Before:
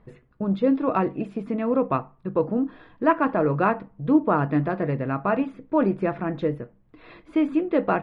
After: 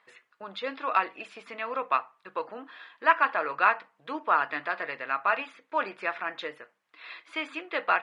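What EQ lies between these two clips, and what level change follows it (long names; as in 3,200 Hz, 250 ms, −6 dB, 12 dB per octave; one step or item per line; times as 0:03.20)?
high-pass filter 1,300 Hz 12 dB per octave
high-frequency loss of the air 50 metres
high-shelf EQ 2,400 Hz +8.5 dB
+4.5 dB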